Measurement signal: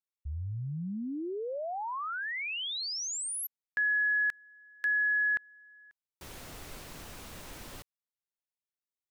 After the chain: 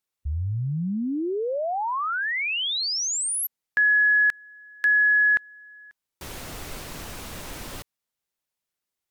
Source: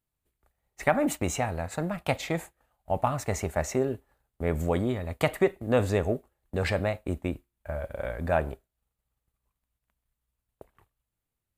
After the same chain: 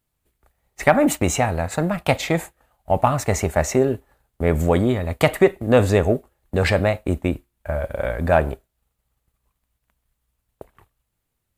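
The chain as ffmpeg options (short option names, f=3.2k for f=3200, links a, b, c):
-af "acontrast=52,volume=3dB" -ar 48000 -c:a aac -b:a 160k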